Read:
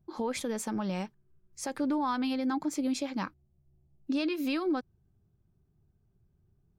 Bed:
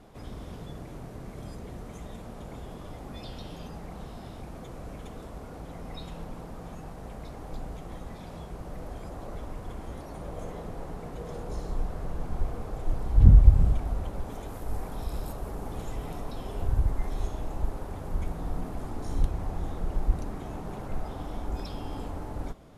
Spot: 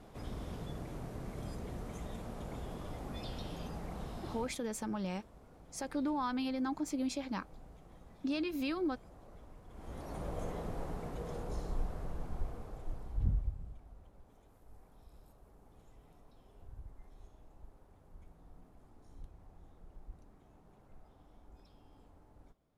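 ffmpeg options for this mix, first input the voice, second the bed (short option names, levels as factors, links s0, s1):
-filter_complex "[0:a]adelay=4150,volume=0.562[s0];[1:a]volume=4.22,afade=t=out:st=4.34:d=0.23:silence=0.188365,afade=t=in:st=9.7:d=0.45:silence=0.188365,afade=t=out:st=10.77:d=2.81:silence=0.0707946[s1];[s0][s1]amix=inputs=2:normalize=0"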